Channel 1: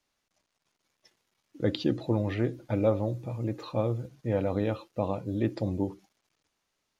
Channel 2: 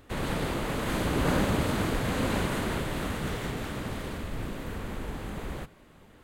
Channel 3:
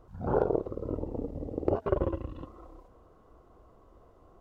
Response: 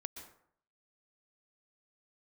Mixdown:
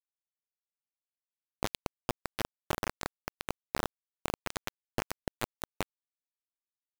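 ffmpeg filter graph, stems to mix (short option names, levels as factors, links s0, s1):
-filter_complex "[0:a]highshelf=f=5300:g=4,bandreject=f=128.2:t=h:w=4,bandreject=f=256.4:t=h:w=4,bandreject=f=384.6:t=h:w=4,bandreject=f=512.8:t=h:w=4,bandreject=f=641:t=h:w=4,bandreject=f=769.2:t=h:w=4,bandreject=f=897.4:t=h:w=4,bandreject=f=1025.6:t=h:w=4,bandreject=f=1153.8:t=h:w=4,bandreject=f=1282:t=h:w=4,bandreject=f=1410.2:t=h:w=4,bandreject=f=1538.4:t=h:w=4,bandreject=f=1666.6:t=h:w=4,bandreject=f=1794.8:t=h:w=4,bandreject=f=1923:t=h:w=4,bandreject=f=2051.2:t=h:w=4,bandreject=f=2179.4:t=h:w=4,bandreject=f=2307.6:t=h:w=4,bandreject=f=2435.8:t=h:w=4,bandreject=f=2564:t=h:w=4,bandreject=f=2692.2:t=h:w=4,bandreject=f=2820.4:t=h:w=4,bandreject=f=2948.6:t=h:w=4,bandreject=f=3076.8:t=h:w=4,bandreject=f=3205:t=h:w=4,bandreject=f=3333.2:t=h:w=4,bandreject=f=3461.4:t=h:w=4,bandreject=f=3589.6:t=h:w=4,bandreject=f=3717.8:t=h:w=4,bandreject=f=3846:t=h:w=4,bandreject=f=3974.2:t=h:w=4,bandreject=f=4102.4:t=h:w=4,bandreject=f=4230.6:t=h:w=4,acompressor=threshold=0.0224:ratio=5,volume=1.26,asplit=2[s0][s1];[s1]volume=0.0944[s2];[1:a]equalizer=f=4300:w=0.69:g=-9.5,adelay=2000,volume=0.562,asplit=2[s3][s4];[s4]volume=0.2[s5];[2:a]highpass=130,adelay=450,volume=0.133[s6];[s3][s6]amix=inputs=2:normalize=0,acrossover=split=440[s7][s8];[s8]acompressor=threshold=0.00447:ratio=6[s9];[s7][s9]amix=inputs=2:normalize=0,alimiter=level_in=1.68:limit=0.0631:level=0:latency=1:release=150,volume=0.596,volume=1[s10];[s2][s5]amix=inputs=2:normalize=0,aecho=0:1:245|490|735|980|1225|1470|1715|1960|2205:1|0.58|0.336|0.195|0.113|0.0656|0.0381|0.0221|0.0128[s11];[s0][s10][s11]amix=inputs=3:normalize=0,acrusher=bits=3:mix=0:aa=0.000001"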